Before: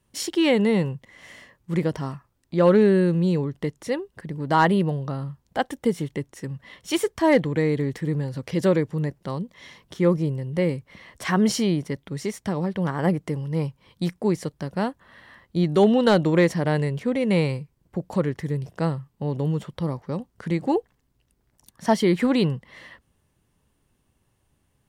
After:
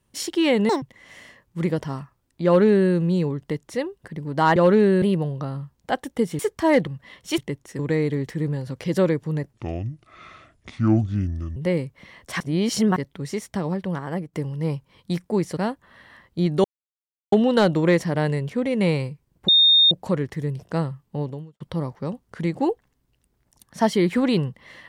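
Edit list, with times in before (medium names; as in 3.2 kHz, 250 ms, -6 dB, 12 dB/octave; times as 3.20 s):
0.69–0.95 s: speed 199%
2.58–3.04 s: copy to 4.69 s
6.06–6.47 s: swap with 6.98–7.46 s
9.20–10.48 s: speed 63%
11.32–11.88 s: reverse
12.65–13.25 s: fade out linear, to -12 dB
14.49–14.75 s: delete
15.82 s: insert silence 0.68 s
17.98 s: add tone 3.67 kHz -11.5 dBFS 0.43 s
19.28–19.67 s: fade out quadratic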